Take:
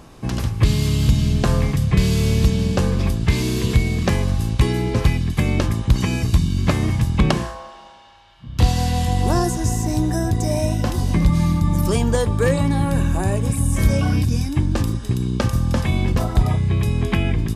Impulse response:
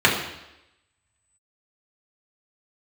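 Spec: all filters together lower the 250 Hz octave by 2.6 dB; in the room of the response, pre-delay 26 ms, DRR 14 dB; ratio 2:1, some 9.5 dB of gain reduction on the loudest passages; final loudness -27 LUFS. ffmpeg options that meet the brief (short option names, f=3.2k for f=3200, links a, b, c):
-filter_complex "[0:a]equalizer=f=250:t=o:g=-4,acompressor=threshold=-28dB:ratio=2,asplit=2[a][b];[1:a]atrim=start_sample=2205,adelay=26[c];[b][c]afir=irnorm=-1:irlink=0,volume=-36dB[d];[a][d]amix=inputs=2:normalize=0,volume=0.5dB"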